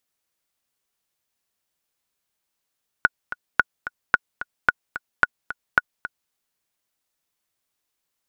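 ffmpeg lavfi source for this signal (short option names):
-f lavfi -i "aevalsrc='pow(10,(-1.5-14*gte(mod(t,2*60/220),60/220))/20)*sin(2*PI*1460*mod(t,60/220))*exp(-6.91*mod(t,60/220)/0.03)':d=3.27:s=44100"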